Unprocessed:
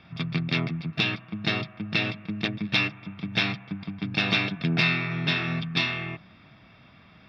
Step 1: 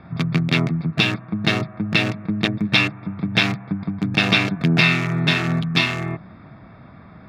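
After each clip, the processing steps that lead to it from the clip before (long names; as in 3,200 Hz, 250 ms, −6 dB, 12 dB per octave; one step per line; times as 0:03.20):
adaptive Wiener filter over 15 samples
in parallel at −2 dB: downward compressor, threshold −36 dBFS, peak gain reduction 16 dB
on the sum: level +6.5 dB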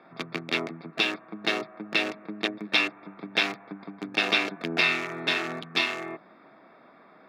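four-pole ladder high-pass 280 Hz, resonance 25%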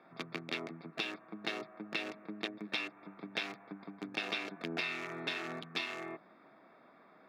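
downward compressor 4 to 1, threshold −27 dBFS, peak gain reduction 8.5 dB
level −7 dB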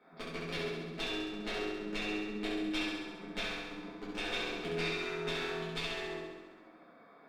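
tube saturation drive 27 dB, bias 0.5
flutter between parallel walls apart 11.5 metres, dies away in 1.2 s
rectangular room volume 32 cubic metres, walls mixed, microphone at 1.3 metres
level −6 dB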